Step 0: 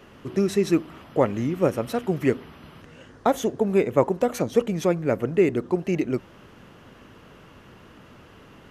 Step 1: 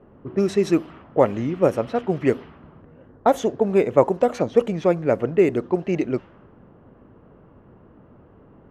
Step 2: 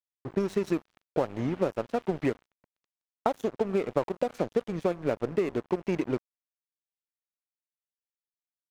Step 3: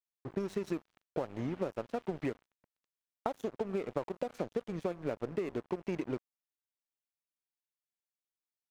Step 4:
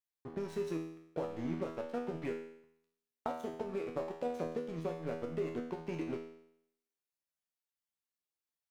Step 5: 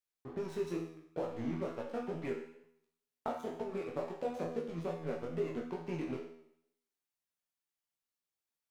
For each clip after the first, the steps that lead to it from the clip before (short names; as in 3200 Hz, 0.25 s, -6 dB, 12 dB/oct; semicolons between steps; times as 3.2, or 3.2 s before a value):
low-pass opened by the level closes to 750 Hz, open at -16.5 dBFS; dynamic EQ 660 Hz, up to +5 dB, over -31 dBFS, Q 0.91
compressor 8:1, threshold -22 dBFS, peak gain reduction 13.5 dB; crossover distortion -37 dBFS
compressor 2:1, threshold -27 dBFS, peak gain reduction 4.5 dB; gain -5 dB
resonator 81 Hz, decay 0.73 s, harmonics all, mix 90%; gain +9.5 dB
chorus 2.2 Hz, delay 16.5 ms, depth 7.4 ms; gain +3 dB